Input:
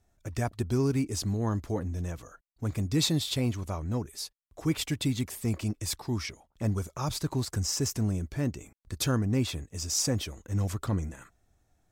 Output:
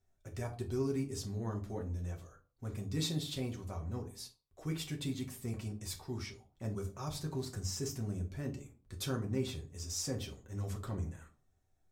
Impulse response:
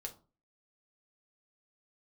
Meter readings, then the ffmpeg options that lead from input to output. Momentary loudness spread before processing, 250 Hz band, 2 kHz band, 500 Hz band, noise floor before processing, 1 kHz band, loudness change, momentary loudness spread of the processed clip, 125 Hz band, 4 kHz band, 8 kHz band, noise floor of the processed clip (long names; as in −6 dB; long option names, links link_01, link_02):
10 LU, −9.0 dB, −9.5 dB, −6.0 dB, −72 dBFS, −9.5 dB, −9.0 dB, 10 LU, −8.5 dB, −9.5 dB, −10.0 dB, −74 dBFS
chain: -filter_complex "[1:a]atrim=start_sample=2205,afade=type=out:start_time=0.35:duration=0.01,atrim=end_sample=15876,asetrate=37926,aresample=44100[link_01];[0:a][link_01]afir=irnorm=-1:irlink=0,volume=-7dB"